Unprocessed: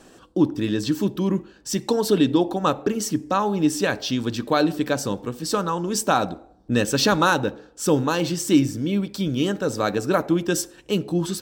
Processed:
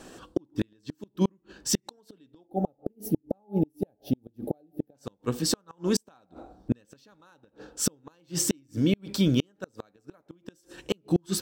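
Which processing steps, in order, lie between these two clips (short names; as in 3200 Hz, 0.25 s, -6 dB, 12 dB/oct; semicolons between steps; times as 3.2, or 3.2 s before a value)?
flipped gate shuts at -14 dBFS, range -41 dB; spectral gain 2.47–4.95, 870–9800 Hz -21 dB; gain +2 dB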